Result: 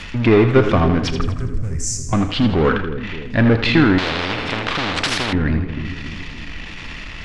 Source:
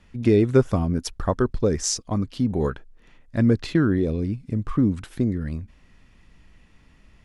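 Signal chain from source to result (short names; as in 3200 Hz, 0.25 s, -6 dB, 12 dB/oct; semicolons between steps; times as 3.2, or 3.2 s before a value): half-wave gain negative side -3 dB; FDN reverb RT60 0.33 s, low-frequency decay 0.95×, high-frequency decay 0.85×, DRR 12.5 dB; power-law curve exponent 0.7; in parallel at -2 dB: limiter -25.5 dBFS, peak gain reduction 17.5 dB; on the sum: bell 3100 Hz +11.5 dB 2.8 oct; treble ducked by the level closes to 2600 Hz, closed at -25 dBFS; 1.21–2.13 EQ curve 130 Hz 0 dB, 290 Hz -30 dB, 2200 Hz -18 dB, 3600 Hz -28 dB, 7700 Hz +14 dB; on a send: split-band echo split 440 Hz, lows 0.285 s, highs 81 ms, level -9 dB; 3.98–5.33 on the sum: spectral compressor 4:1; gain +1.5 dB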